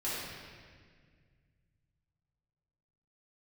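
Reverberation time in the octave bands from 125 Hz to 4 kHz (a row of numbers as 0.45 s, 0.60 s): 3.5 s, 2.5 s, 2.0 s, 1.6 s, 1.9 s, 1.5 s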